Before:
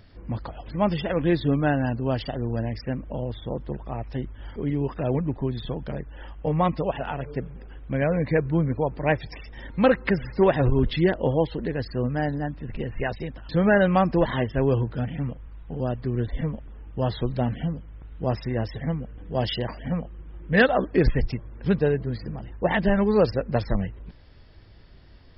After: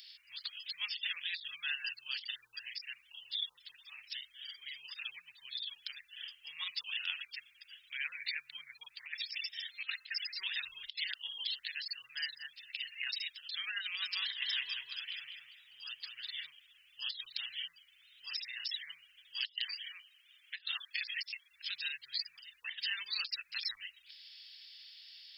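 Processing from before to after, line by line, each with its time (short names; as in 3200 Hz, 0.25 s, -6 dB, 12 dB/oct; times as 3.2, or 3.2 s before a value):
13.82–16.47 darkening echo 0.199 s, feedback 38%, low-pass 4100 Hz, level -4.5 dB
19.77–21.5 HPF 1100 Hz -> 350 Hz 24 dB/oct
whole clip: inverse Chebyshev high-pass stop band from 680 Hz, stop band 70 dB; negative-ratio compressor -48 dBFS, ratio -0.5; gain +10 dB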